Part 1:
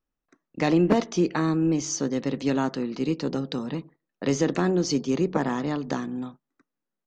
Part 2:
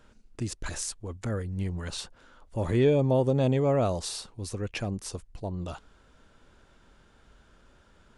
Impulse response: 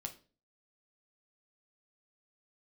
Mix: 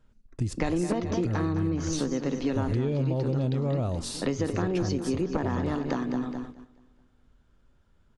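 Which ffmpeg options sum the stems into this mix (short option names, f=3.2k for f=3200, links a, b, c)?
-filter_complex "[0:a]lowpass=f=3.3k:p=1,volume=2dB,asplit=2[a][b];[b]volume=-9dB[c];[1:a]lowshelf=f=270:g=10.5,volume=-2.5dB,asplit=2[d][e];[e]volume=-9.5dB[f];[2:a]atrim=start_sample=2205[g];[f][g]afir=irnorm=-1:irlink=0[h];[c]aecho=0:1:212|424|636|848|1060|1272|1484:1|0.48|0.23|0.111|0.0531|0.0255|0.0122[i];[a][d][h][i]amix=inputs=4:normalize=0,agate=range=-12dB:threshold=-38dB:ratio=16:detection=peak,acompressor=threshold=-24dB:ratio=6"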